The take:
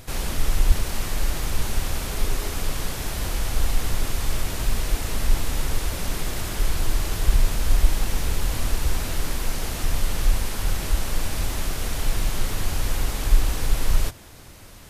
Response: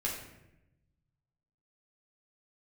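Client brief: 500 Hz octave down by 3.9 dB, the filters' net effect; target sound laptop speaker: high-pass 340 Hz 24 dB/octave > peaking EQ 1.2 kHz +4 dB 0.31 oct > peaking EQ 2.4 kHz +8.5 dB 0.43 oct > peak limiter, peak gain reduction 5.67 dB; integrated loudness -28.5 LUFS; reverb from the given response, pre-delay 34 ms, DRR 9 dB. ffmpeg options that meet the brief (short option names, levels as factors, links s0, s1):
-filter_complex "[0:a]equalizer=f=500:t=o:g=-4.5,asplit=2[s0][s1];[1:a]atrim=start_sample=2205,adelay=34[s2];[s1][s2]afir=irnorm=-1:irlink=0,volume=0.224[s3];[s0][s3]amix=inputs=2:normalize=0,highpass=f=340:w=0.5412,highpass=f=340:w=1.3066,equalizer=f=1200:t=o:w=0.31:g=4,equalizer=f=2400:t=o:w=0.43:g=8.5,volume=1.5,alimiter=limit=0.0891:level=0:latency=1"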